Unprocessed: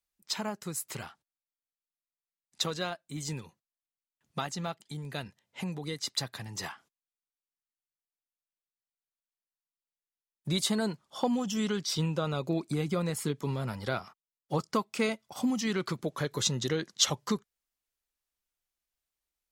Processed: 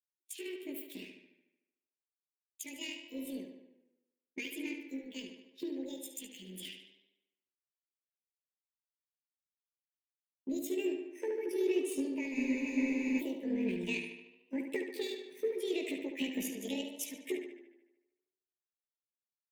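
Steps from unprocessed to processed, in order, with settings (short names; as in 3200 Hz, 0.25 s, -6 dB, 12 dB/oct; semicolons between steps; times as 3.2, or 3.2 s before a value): delay-line pitch shifter +10 st; Chebyshev band-stop 720–2300 Hz, order 2; bell 2400 Hz -3 dB 2.2 oct; fixed phaser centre 310 Hz, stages 4; compressor 4:1, threshold -36 dBFS, peak gain reduction 12 dB; resonant high shelf 3900 Hz -9.5 dB, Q 1.5; tape echo 73 ms, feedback 83%, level -5 dB, low-pass 5200 Hz; spectral freeze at 12.36, 0.84 s; three-band expander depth 100%; gain +2 dB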